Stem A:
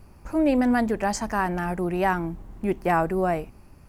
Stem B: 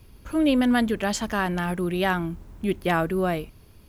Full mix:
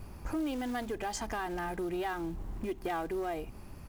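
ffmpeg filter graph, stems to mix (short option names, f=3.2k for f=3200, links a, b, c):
-filter_complex "[0:a]acompressor=threshold=-31dB:ratio=6,asoftclip=type=tanh:threshold=-28.5dB,volume=2.5dB,asplit=2[a][b];[1:a]equalizer=f=420:w=3.6:g=-4,acrusher=bits=4:mode=log:mix=0:aa=0.000001,adelay=2.4,volume=-7dB[c];[b]apad=whole_len=171622[d];[c][d]sidechaincompress=threshold=-36dB:ratio=8:attack=16:release=553[e];[a][e]amix=inputs=2:normalize=0,acompressor=threshold=-36dB:ratio=1.5"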